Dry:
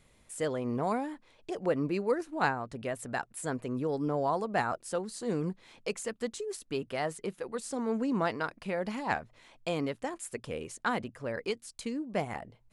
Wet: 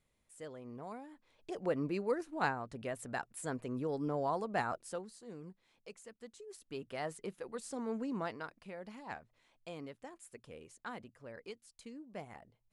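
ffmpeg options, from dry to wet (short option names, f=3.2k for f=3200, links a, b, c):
-af "volume=5.5dB,afade=t=in:st=1.08:d=0.48:silence=0.298538,afade=t=out:st=4.76:d=0.46:silence=0.251189,afade=t=in:st=6.32:d=0.75:silence=0.298538,afade=t=out:st=7.83:d=0.92:silence=0.421697"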